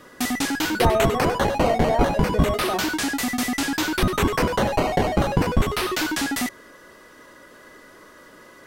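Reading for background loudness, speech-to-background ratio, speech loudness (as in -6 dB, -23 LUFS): -23.0 LUFS, -3.5 dB, -26.5 LUFS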